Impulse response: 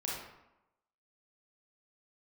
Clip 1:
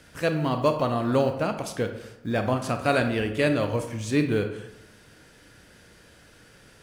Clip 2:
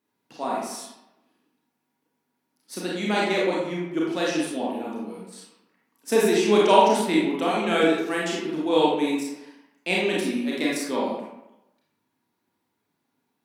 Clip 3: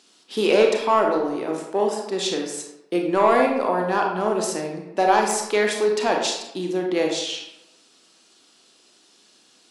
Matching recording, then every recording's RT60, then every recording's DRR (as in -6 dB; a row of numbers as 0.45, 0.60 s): 2; 0.90, 0.90, 0.90 s; 6.5, -5.0, 1.0 dB